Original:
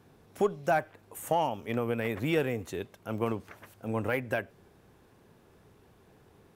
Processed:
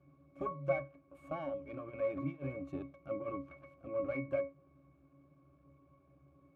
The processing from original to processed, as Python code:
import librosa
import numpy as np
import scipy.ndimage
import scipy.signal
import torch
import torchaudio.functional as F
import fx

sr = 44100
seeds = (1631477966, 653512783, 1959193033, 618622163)

y = np.where(x < 0.0, 10.0 ** (-12.0 / 20.0) * x, x)
y = fx.over_compress(y, sr, threshold_db=-35.0, ratio=-0.5, at=(1.85, 3.88), fade=0.02)
y = fx.highpass(y, sr, hz=170.0, slope=6)
y = fx.octave_resonator(y, sr, note='C#', decay_s=0.25)
y = F.gain(torch.from_numpy(y), 13.5).numpy()